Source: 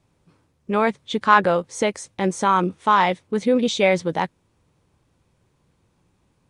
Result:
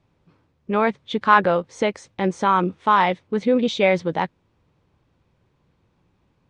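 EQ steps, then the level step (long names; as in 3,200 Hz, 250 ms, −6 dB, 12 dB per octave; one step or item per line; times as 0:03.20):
low-pass filter 4,200 Hz 12 dB per octave
0.0 dB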